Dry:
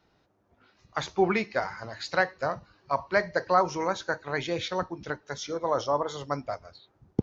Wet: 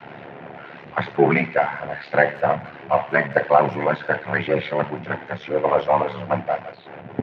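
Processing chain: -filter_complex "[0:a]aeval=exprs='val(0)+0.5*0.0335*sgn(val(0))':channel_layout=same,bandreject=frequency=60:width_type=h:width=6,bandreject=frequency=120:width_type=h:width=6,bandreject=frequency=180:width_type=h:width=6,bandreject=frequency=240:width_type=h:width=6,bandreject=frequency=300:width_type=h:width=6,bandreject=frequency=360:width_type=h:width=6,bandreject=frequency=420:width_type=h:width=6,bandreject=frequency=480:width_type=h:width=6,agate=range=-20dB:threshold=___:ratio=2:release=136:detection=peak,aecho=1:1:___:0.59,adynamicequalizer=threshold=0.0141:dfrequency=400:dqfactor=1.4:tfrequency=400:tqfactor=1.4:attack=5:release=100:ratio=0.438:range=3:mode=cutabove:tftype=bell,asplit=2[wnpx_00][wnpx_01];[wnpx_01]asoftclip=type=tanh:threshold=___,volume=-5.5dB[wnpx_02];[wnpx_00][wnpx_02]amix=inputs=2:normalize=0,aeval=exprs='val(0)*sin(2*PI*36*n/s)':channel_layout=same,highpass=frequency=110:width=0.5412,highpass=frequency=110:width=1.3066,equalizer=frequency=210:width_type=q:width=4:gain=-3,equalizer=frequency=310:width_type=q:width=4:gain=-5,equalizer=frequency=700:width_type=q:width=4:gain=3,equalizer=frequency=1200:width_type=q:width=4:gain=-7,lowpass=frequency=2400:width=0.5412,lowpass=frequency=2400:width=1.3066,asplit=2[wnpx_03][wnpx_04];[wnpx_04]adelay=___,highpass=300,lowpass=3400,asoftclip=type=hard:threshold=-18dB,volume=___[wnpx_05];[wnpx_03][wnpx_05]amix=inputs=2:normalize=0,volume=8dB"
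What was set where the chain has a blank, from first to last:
-24dB, 5.8, -27dB, 170, -24dB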